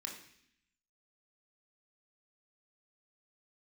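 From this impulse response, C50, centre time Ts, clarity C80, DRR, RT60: 6.5 dB, 28 ms, 9.5 dB, -0.5 dB, 0.65 s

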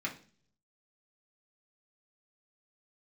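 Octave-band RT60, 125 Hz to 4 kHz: 0.90 s, 0.65 s, 0.50 s, 0.35 s, 0.40 s, 0.50 s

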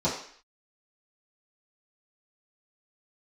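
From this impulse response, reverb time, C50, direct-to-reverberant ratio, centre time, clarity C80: 0.55 s, 5.5 dB, -11.0 dB, 34 ms, 9.0 dB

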